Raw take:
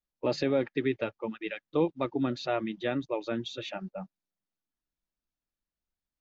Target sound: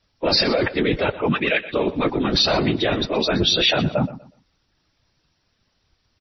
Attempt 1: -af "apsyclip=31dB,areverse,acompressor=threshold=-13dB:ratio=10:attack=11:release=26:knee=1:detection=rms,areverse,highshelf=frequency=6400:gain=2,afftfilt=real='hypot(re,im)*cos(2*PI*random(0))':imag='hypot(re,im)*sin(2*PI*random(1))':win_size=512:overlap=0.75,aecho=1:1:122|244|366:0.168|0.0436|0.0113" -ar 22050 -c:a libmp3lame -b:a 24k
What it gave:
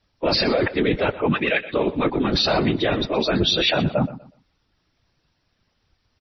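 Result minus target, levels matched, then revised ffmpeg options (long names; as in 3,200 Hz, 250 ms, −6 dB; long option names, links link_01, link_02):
8,000 Hz band −3.5 dB
-af "apsyclip=31dB,areverse,acompressor=threshold=-13dB:ratio=10:attack=11:release=26:knee=1:detection=rms,areverse,highshelf=frequency=6400:gain=12.5,afftfilt=real='hypot(re,im)*cos(2*PI*random(0))':imag='hypot(re,im)*sin(2*PI*random(1))':win_size=512:overlap=0.75,aecho=1:1:122|244|366:0.168|0.0436|0.0113" -ar 22050 -c:a libmp3lame -b:a 24k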